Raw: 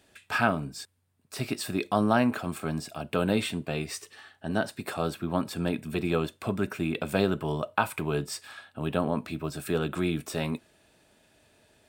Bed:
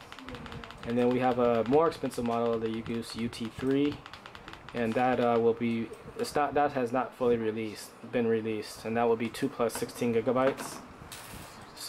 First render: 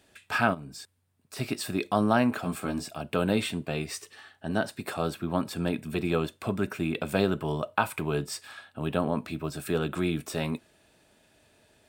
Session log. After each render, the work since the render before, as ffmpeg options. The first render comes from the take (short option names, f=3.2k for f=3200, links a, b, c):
-filter_complex "[0:a]asplit=3[a][b][c];[a]afade=t=out:st=0.53:d=0.02[d];[b]acompressor=threshold=-39dB:ratio=3:attack=3.2:release=140:knee=1:detection=peak,afade=t=in:st=0.53:d=0.02,afade=t=out:st=1.36:d=0.02[e];[c]afade=t=in:st=1.36:d=0.02[f];[d][e][f]amix=inputs=3:normalize=0,asettb=1/sr,asplit=3[g][h][i];[g]atrim=end=2.414[j];[h]atrim=start=2.41:end=2.89,asetpts=PTS-STARTPTS,afade=t=in:d=0.004:c=qsin,afade=t=out:st=0.476:d=0.004:c=qsin,asplit=2[k][l];[l]adelay=16,volume=-4dB[m];[k][m]amix=inputs=2:normalize=0,atrim=end_sample=21168[n];[i]atrim=start=2.886[o];[j][n]acrossfade=d=0.004:c1=hsin:c2=qsin[p];[p][o]acrossfade=d=0.004:c1=qsin:c2=hsin"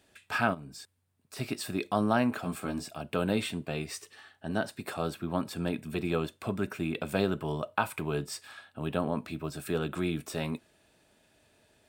-af "volume=-3dB"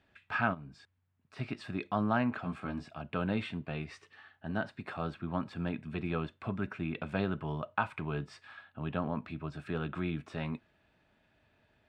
-af "lowpass=2.3k,equalizer=f=440:t=o:w=1.6:g=-7.5"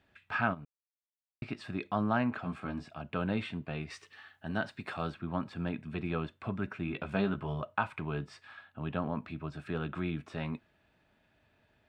-filter_complex "[0:a]asettb=1/sr,asplit=3[a][b][c];[a]atrim=end=3.904[d];[b]atrim=start=3.9:end=5.12,asetpts=PTS-STARTPTS,afade=t=in:d=0.004:c=qsin,afade=t=out:st=1.216:d=0.004:c=qsin,highshelf=f=2.4k:g=7.5[e];[c]atrim=start=5.116[f];[d][e]acrossfade=d=0.004:c1=hsin:c2=qsin[g];[g][f]acrossfade=d=0.004:c1=qsin:c2=hsin,asettb=1/sr,asplit=3[h][i][j];[h]atrim=end=6.864[k];[i]atrim=start=6.86:end=7.64,asetpts=PTS-STARTPTS,afade=t=in:d=0.004:c=qsin,afade=t=out:st=0.776:d=0.004:c=qsin,asplit=2[l][m];[m]adelay=15,volume=-5dB[n];[l][n]amix=inputs=2:normalize=0,atrim=end_sample=34398[o];[j]atrim=start=7.636[p];[k][o]acrossfade=d=0.004:c1=hsin:c2=qsin[q];[q][p]acrossfade=d=0.004:c1=qsin:c2=hsin,asplit=3[r][s][t];[r]atrim=end=0.65,asetpts=PTS-STARTPTS,afade=t=out:st=0.646:d=0.004:c=hsin[u];[s]atrim=start=0.65:end=1.42,asetpts=PTS-STARTPTS,volume=0[v];[t]atrim=start=1.42,asetpts=PTS-STARTPTS,afade=t=in:d=0.004:c=hsin[w];[u][v][w]concat=n=3:v=0:a=1"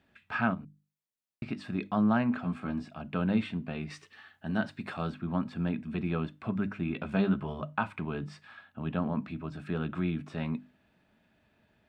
-af "equalizer=f=210:w=1.8:g=8,bandreject=f=50:t=h:w=6,bandreject=f=100:t=h:w=6,bandreject=f=150:t=h:w=6,bandreject=f=200:t=h:w=6,bandreject=f=250:t=h:w=6,bandreject=f=300:t=h:w=6"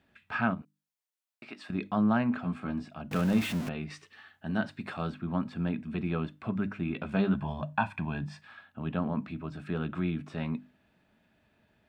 -filter_complex "[0:a]asettb=1/sr,asplit=3[a][b][c];[a]atrim=end=0.624[d];[b]atrim=start=0.62:end=1.7,asetpts=PTS-STARTPTS,afade=t=in:d=0.004:c=qsin,afade=t=out:st=1.076:d=0.004:c=qsin,highpass=500[e];[c]atrim=start=1.696[f];[d][e]acrossfade=d=0.004:c1=hsin:c2=qsin[g];[g][f]acrossfade=d=0.004:c1=qsin:c2=hsin,asettb=1/sr,asplit=3[h][i][j];[h]atrim=end=3.114[k];[i]atrim=start=3.11:end=3.69,asetpts=PTS-STARTPTS,afade=t=in:d=0.004:c=qsin,afade=t=out:st=0.576:d=0.004:c=qsin,aeval=exprs='val(0)+0.5*0.0237*sgn(val(0))':c=same[l];[j]atrim=start=3.686[m];[k][l]acrossfade=d=0.004:c1=hsin:c2=qsin[n];[n][m]acrossfade=d=0.004:c1=qsin:c2=hsin,asettb=1/sr,asplit=3[o][p][q];[o]atrim=end=7.344[r];[p]atrim=start=7.34:end=8.41,asetpts=PTS-STARTPTS,afade=t=in:d=0.004:c=qsin,afade=t=out:st=1.066:d=0.004:c=qsin,aecho=1:1:1.2:0.68,atrim=end_sample=47187[s];[q]atrim=start=8.406[t];[r][s]acrossfade=d=0.004:c1=hsin:c2=qsin[u];[u][t]acrossfade=d=0.004:c1=qsin:c2=hsin"